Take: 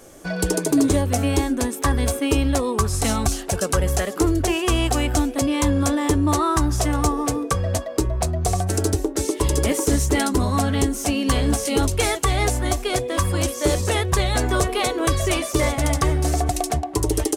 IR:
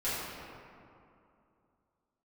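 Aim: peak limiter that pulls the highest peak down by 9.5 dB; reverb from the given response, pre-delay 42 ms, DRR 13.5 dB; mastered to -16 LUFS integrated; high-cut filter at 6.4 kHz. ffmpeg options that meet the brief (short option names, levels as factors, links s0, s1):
-filter_complex "[0:a]lowpass=6400,alimiter=limit=0.112:level=0:latency=1,asplit=2[s0][s1];[1:a]atrim=start_sample=2205,adelay=42[s2];[s1][s2]afir=irnorm=-1:irlink=0,volume=0.0841[s3];[s0][s3]amix=inputs=2:normalize=0,volume=3.76"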